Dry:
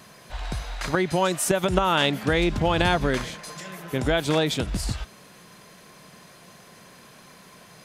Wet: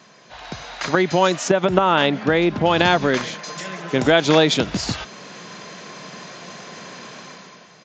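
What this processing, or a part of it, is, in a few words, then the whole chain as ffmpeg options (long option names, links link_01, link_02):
Bluetooth headset: -filter_complex "[0:a]asettb=1/sr,asplit=3[link_01][link_02][link_03];[link_01]atrim=end=1.484[link_04];[link_02]atrim=start=1.48:end=2.66,asetpts=PTS-STARTPTS,afade=type=in:duration=0.004:curve=qsin,afade=type=out:start_time=1.176:duration=0.004:curve=qsin,aemphasis=mode=reproduction:type=75kf[link_05];[link_03]atrim=start=2.656[link_06];[link_04][link_05]acrossfade=duration=0.004:curve1=hsin:curve2=qsin[link_07];[link_07][link_06]acrossfade=duration=0.004:curve1=qsin:curve2=hsin,highpass=170,dynaudnorm=framelen=110:gausssize=11:maxgain=12.5dB,aresample=16000,aresample=44100" -ar 16000 -c:a sbc -b:a 64k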